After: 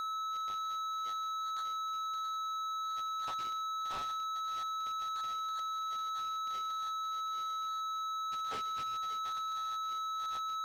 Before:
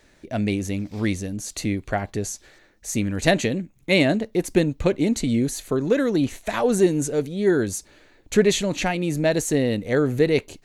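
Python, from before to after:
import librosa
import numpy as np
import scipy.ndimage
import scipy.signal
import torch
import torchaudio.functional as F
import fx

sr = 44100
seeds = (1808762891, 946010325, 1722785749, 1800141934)

y = fx.band_shuffle(x, sr, order='3412')
y = scipy.signal.sosfilt(scipy.signal.ellip(4, 1.0, 40, 1700.0, 'lowpass', fs=sr, output='sos'), y)
y = y + 10.0 ** (-22.0 / 20.0) * np.sin(2.0 * np.pi * 1300.0 * np.arange(len(y)) / sr)
y = fx.echo_multitap(y, sr, ms=(134, 576), db=(-19.5, -14.5))
y = np.clip(y, -10.0 ** (-28.5 / 20.0), 10.0 ** (-28.5 / 20.0))
y = y * 10.0 ** (-8.0 / 20.0)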